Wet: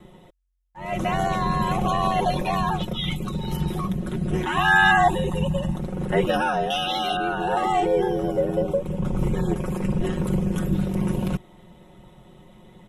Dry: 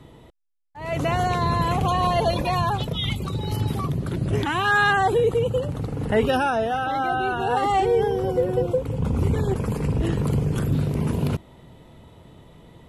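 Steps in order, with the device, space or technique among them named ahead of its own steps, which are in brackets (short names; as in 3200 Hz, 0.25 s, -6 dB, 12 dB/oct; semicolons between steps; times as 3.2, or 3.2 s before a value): notch 4500 Hz, Q 5.2; ring-modulated robot voice (ring modulator 45 Hz; comb 5.5 ms, depth 77%); 4.57–5.76 comb 1.1 ms, depth 100%; 6.7–7.17 resonant high shelf 2300 Hz +11 dB, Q 3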